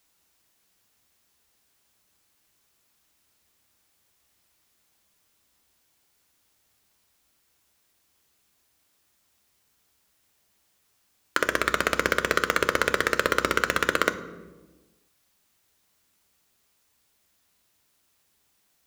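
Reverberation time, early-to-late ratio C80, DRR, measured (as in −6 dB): 1.2 s, 15.5 dB, 9.5 dB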